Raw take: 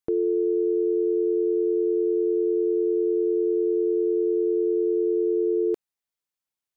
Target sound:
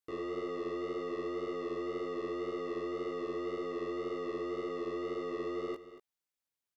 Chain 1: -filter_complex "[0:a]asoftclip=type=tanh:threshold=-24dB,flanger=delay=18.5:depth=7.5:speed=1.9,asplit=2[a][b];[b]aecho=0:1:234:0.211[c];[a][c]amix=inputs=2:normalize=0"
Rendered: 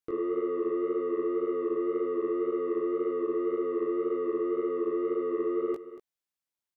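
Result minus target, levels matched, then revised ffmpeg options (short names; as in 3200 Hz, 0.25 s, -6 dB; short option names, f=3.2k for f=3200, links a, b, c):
soft clip: distortion -6 dB
-filter_complex "[0:a]asoftclip=type=tanh:threshold=-34dB,flanger=delay=18.5:depth=7.5:speed=1.9,asplit=2[a][b];[b]aecho=0:1:234:0.211[c];[a][c]amix=inputs=2:normalize=0"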